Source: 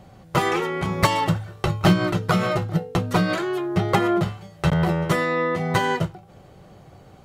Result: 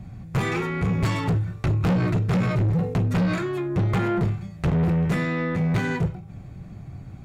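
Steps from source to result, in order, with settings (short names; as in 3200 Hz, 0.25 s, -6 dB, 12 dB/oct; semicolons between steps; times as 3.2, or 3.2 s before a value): 2.5–2.94 transient shaper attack -5 dB, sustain +10 dB; tone controls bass +9 dB, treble -6 dB; reverb RT60 0.40 s, pre-delay 3 ms, DRR 9.5 dB; soft clip -18.5 dBFS, distortion -5 dB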